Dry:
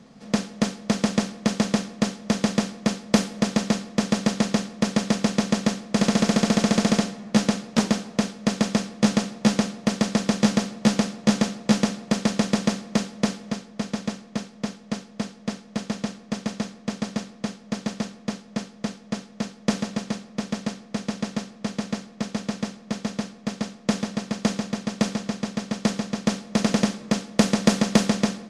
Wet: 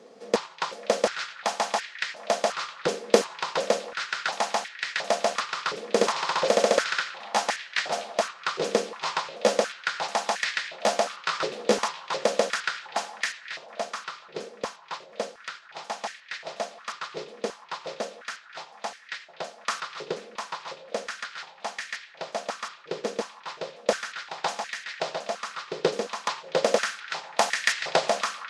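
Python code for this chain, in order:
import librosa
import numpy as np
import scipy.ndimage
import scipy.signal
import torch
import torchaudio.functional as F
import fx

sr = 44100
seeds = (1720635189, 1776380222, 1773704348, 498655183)

y = fx.pitch_trill(x, sr, semitones=-4.5, every_ms=360)
y = fx.echo_stepped(y, sr, ms=247, hz=3000.0, octaves=-0.7, feedback_pct=70, wet_db=-11.5)
y = fx.filter_held_highpass(y, sr, hz=2.8, low_hz=440.0, high_hz=1800.0)
y = F.gain(torch.from_numpy(y), -1.5).numpy()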